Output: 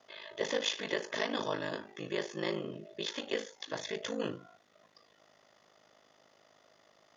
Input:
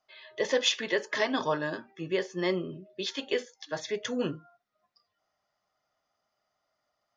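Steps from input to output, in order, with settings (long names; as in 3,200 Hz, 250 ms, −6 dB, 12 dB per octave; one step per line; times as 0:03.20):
compressor on every frequency bin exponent 0.6
ring modulation 26 Hz
level −6 dB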